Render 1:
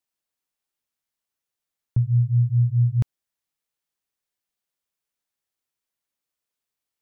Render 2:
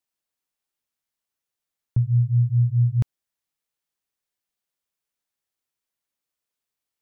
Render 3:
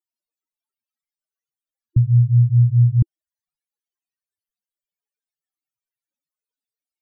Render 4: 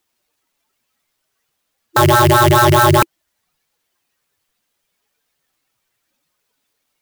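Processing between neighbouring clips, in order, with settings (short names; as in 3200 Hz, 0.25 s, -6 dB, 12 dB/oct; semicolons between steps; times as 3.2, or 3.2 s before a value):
nothing audible
loudest bins only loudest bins 16; gain +5.5 dB
rattling part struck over -23 dBFS, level -26 dBFS; sine folder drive 19 dB, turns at -7 dBFS; clock jitter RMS 0.035 ms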